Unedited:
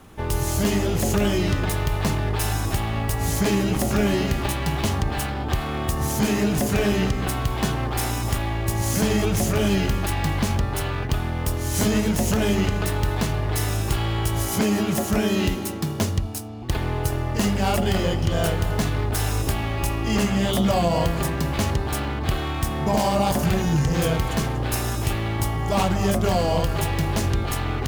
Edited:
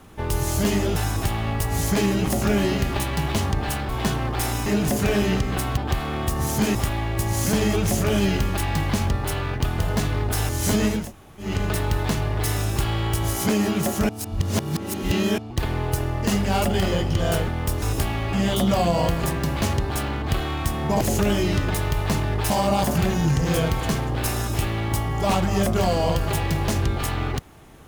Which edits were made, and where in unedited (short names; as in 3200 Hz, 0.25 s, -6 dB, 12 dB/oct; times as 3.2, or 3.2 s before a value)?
0.96–2.45 move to 22.98
5.38–6.36 swap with 7.47–8.24
11.27–11.61 swap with 18.6–19.31
12.13–12.61 room tone, crossfade 0.24 s
15.21–16.5 reverse
19.82–20.3 cut